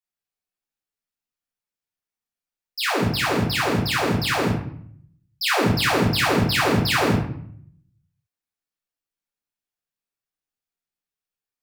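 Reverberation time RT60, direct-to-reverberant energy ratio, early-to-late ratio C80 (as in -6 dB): 0.60 s, -7.5 dB, 7.5 dB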